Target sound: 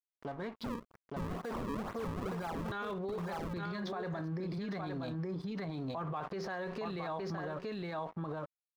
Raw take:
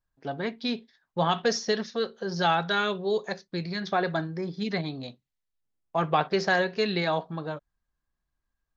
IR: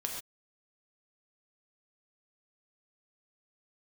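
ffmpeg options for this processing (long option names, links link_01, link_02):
-filter_complex "[0:a]acompressor=threshold=-40dB:ratio=4,asettb=1/sr,asplit=3[link_01][link_02][link_03];[link_01]atrim=end=0.644[link_04];[link_02]atrim=start=0.64:end=2.72,asetpts=PTS-STARTPTS,afade=type=in:duration=0.004:curve=qsin,afade=type=out:start_time=2.076:duration=0.004:curve=qsin,acrusher=samples=35:mix=1:aa=0.000001:lfo=1:lforange=56:lforate=2.1[link_05];[link_03]atrim=start=2.716[link_06];[link_04][link_05]acrossfade=duration=0.004:curve1=hsin:curve2=qsin[link_07];[link_07][link_06]acrossfade=duration=0.004:curve1=qsin:curve2=hsin,dynaudnorm=framelen=270:gausssize=5:maxgain=13.5dB,aeval=exprs='sgn(val(0))*max(abs(val(0))-0.00398,0)':channel_layout=same,highshelf=frequency=2300:gain=-11,aecho=1:1:866:0.501,alimiter=level_in=14dB:limit=-24dB:level=0:latency=1:release=27,volume=-14dB,equalizer=frequency=1100:width=2.6:gain=6.5,volume=5.5dB"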